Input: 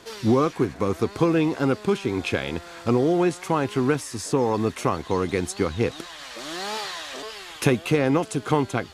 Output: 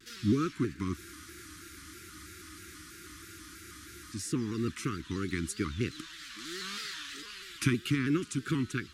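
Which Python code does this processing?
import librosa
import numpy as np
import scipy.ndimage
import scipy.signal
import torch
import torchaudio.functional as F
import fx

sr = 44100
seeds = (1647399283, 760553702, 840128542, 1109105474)

y = scipy.signal.sosfilt(scipy.signal.cheby1(3, 1.0, [340.0, 1300.0], 'bandstop', fs=sr, output='sos'), x)
y = fx.spec_freeze(y, sr, seeds[0], at_s=0.98, hold_s=3.15)
y = fx.vibrato_shape(y, sr, shape='square', rate_hz=3.1, depth_cents=100.0)
y = y * 10.0 ** (-5.5 / 20.0)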